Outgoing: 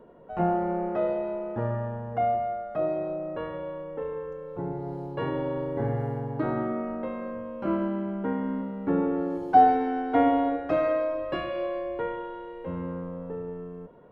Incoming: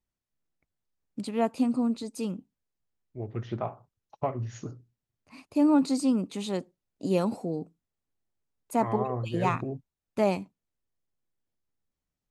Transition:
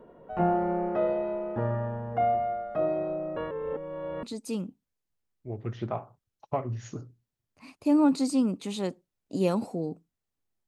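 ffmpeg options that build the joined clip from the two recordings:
-filter_complex "[0:a]apad=whole_dur=10.67,atrim=end=10.67,asplit=2[a][b];[a]atrim=end=3.512[c];[b]atrim=start=3.508:end=4.232,asetpts=PTS-STARTPTS,areverse[d];[1:a]atrim=start=1.928:end=8.37[e];[c][d]acrossfade=d=0.004:c1=hsin:c2=hsin[f];[f][e]acrossfade=d=0.004:c1=hsin:c2=hsin"

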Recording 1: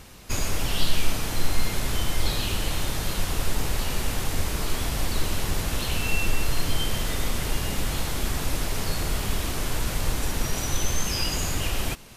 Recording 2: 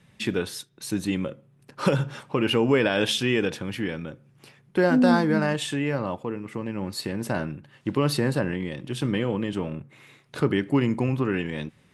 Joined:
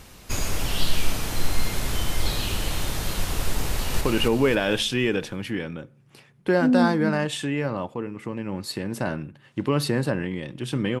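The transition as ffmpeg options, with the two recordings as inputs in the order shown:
-filter_complex "[0:a]apad=whole_dur=11,atrim=end=11,atrim=end=4.012[a];[1:a]atrim=start=2.298:end=9.29[b];[a][b]acrossfade=d=0.004:c1=hsin:c2=hsin,asplit=2[c][d];[d]afade=t=in:st=3.66:d=0.01,afade=t=out:st=4.01:d=0.01,aecho=0:1:270|540|810|1080|1350|1620:0.707946|0.318576|0.143359|0.0645116|0.0290302|0.0130636[e];[c][e]amix=inputs=2:normalize=0"

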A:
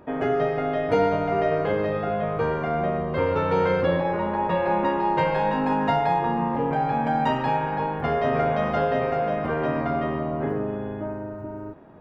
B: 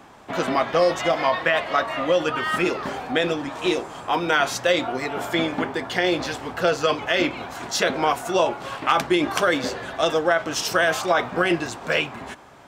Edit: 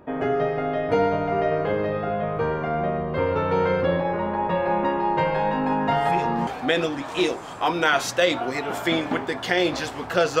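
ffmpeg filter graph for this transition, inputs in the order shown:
-filter_complex "[1:a]asplit=2[a][b];[0:a]apad=whole_dur=10.4,atrim=end=10.4,atrim=end=6.472[c];[b]atrim=start=2.938:end=6.87[d];[a]atrim=start=2.38:end=2.94,asetpts=PTS-STARTPTS,volume=-9.5dB,afade=t=in:d=0.004:c=hsin,afade=t=out:st=0.556:d=0.004:c=hsin,adelay=5910[e];[c][d]acrossfade=d=0.004:c1=hsin:c2=hsin[f];[f][e]amix=inputs=2:normalize=0"

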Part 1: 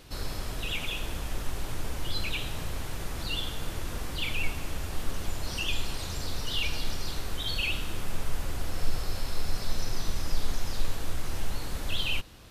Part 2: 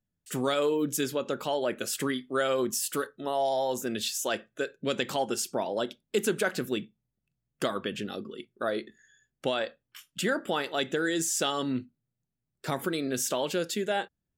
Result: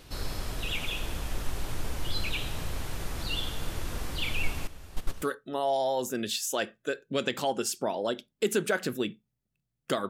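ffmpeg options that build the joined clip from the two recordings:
-filter_complex "[0:a]asettb=1/sr,asplit=3[a][b][c];[a]atrim=end=4.674[d];[b]atrim=start=4.67:end=5.22,asetpts=PTS-STARTPTS,afade=t=in:d=0.004:c=qsin,afade=t=out:st=0.546:d=0.004:c=qsin,agate=range=-13dB:threshold=-25dB:ratio=16:release=100:detection=peak[e];[c]atrim=start=5.216[f];[d][e]acrossfade=d=0.004:c1=hsin:c2=qsin[g];[g][f]acrossfade=d=0.004:c1=qsin:c2=hsin,apad=whole_dur=10.09,atrim=end=10.09,atrim=end=5.222[h];[1:a]atrim=start=2.938:end=7.81[i];[h][i]acrossfade=d=0.004:c1=hsin:c2=hsin"

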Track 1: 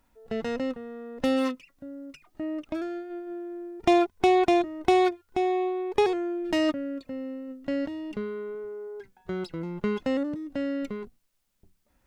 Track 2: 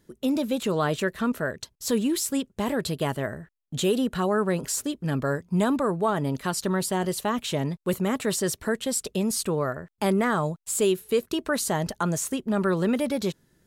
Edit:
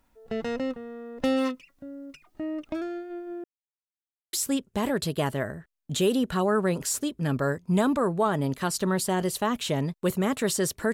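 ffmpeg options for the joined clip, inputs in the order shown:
-filter_complex "[0:a]apad=whole_dur=10.93,atrim=end=10.93,asplit=2[a][b];[a]atrim=end=3.44,asetpts=PTS-STARTPTS,afade=t=out:st=3.436:d=0.004:c=hsin[c];[b]atrim=start=3.44:end=4.33,asetpts=PTS-STARTPTS,volume=0[d];[1:a]atrim=start=2.16:end=8.76,asetpts=PTS-STARTPTS,afade=t=in:d=0.004:c=hsin[e];[c][d][e]concat=n=3:v=0:a=1"

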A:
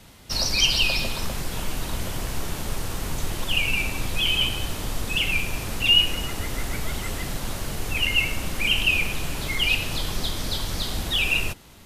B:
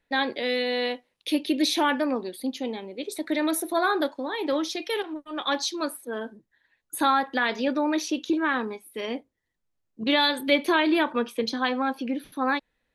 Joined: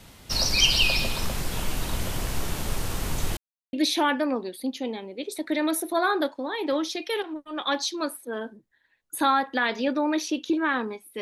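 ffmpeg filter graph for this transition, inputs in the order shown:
-filter_complex "[0:a]apad=whole_dur=11.21,atrim=end=11.21,asplit=2[a][b];[a]atrim=end=3.37,asetpts=PTS-STARTPTS,afade=t=out:st=3.366:d=0.004:c=hsin[c];[b]atrim=start=3.37:end=3.73,asetpts=PTS-STARTPTS,volume=0[d];[1:a]atrim=start=1.53:end=9.01,asetpts=PTS-STARTPTS,afade=t=in:d=0.004:c=hsin[e];[c][d][e]concat=n=3:v=0:a=1"

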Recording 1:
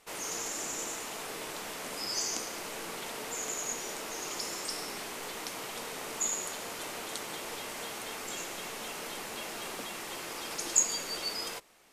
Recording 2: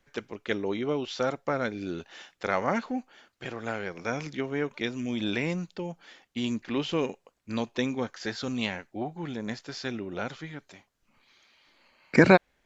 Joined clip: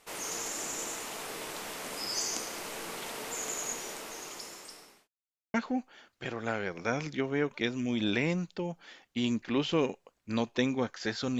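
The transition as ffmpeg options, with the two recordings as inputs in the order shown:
-filter_complex "[0:a]apad=whole_dur=11.39,atrim=end=11.39,asplit=2[a][b];[a]atrim=end=5.08,asetpts=PTS-STARTPTS,afade=t=out:st=3.63:d=1.45[c];[b]atrim=start=5.08:end=5.54,asetpts=PTS-STARTPTS,volume=0[d];[1:a]atrim=start=2.74:end=8.59,asetpts=PTS-STARTPTS,afade=t=in:d=0.004:c=hsin[e];[c][d][e]concat=n=3:v=0:a=1"

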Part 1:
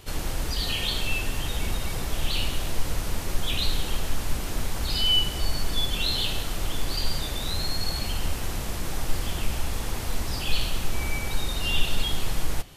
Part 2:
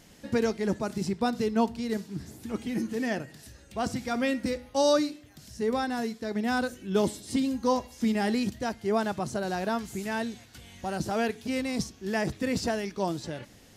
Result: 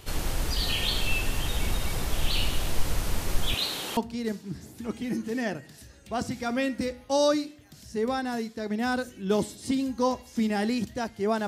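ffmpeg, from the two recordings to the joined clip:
-filter_complex "[0:a]asettb=1/sr,asplit=3[a][b][c];[a]atrim=end=3.544[d];[b]atrim=start=3.54:end=3.97,asetpts=PTS-STARTPTS,afade=t=in:d=0.004:c=qsin,afade=t=out:st=0.426:d=0.004:c=qsin,highpass=270[e];[c]atrim=start=3.966[f];[d][e]acrossfade=d=0.004:c1=hsin:c2=qsin[g];[g][f]acrossfade=d=0.004:c1=qsin:c2=hsin,apad=whole_dur=11.47,atrim=end=11.47,atrim=end=3.972[h];[1:a]atrim=start=1.618:end=9.12[i];[h][i]acrossfade=d=0.004:c1=hsin:c2=hsin"

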